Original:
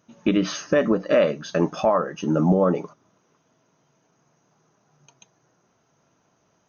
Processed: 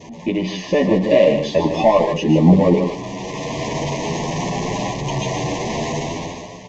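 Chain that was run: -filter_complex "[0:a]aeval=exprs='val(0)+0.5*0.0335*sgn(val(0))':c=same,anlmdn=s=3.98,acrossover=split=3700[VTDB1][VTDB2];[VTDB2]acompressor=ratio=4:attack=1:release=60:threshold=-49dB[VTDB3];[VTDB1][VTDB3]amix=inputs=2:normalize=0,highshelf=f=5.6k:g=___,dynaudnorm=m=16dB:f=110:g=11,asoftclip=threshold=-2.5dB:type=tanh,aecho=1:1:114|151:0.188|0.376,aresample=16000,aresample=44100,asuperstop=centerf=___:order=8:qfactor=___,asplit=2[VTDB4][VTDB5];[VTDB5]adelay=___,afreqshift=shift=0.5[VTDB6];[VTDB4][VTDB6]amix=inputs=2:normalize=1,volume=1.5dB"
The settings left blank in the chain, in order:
2.5, 1400, 1.9, 9.9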